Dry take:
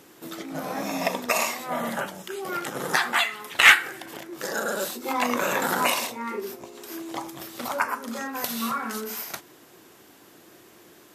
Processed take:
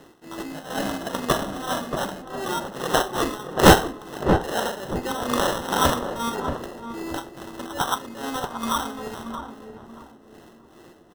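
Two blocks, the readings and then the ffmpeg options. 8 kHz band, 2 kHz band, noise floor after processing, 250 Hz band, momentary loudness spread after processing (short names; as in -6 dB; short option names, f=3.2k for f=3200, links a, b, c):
+0.5 dB, -6.5 dB, -51 dBFS, +6.5 dB, 14 LU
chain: -filter_complex "[0:a]lowpass=f=4.3k:w=0.5412,lowpass=f=4.3k:w=1.3066,acrusher=samples=19:mix=1:aa=0.000001,tremolo=f=2.4:d=0.77,acrusher=bits=3:mode=log:mix=0:aa=0.000001,asplit=2[a][b];[b]adelay=630,lowpass=f=810:p=1,volume=-5dB,asplit=2[c][d];[d]adelay=630,lowpass=f=810:p=1,volume=0.34,asplit=2[e][f];[f]adelay=630,lowpass=f=810:p=1,volume=0.34,asplit=2[g][h];[h]adelay=630,lowpass=f=810:p=1,volume=0.34[i];[a][c][e][g][i]amix=inputs=5:normalize=0,volume=4.5dB"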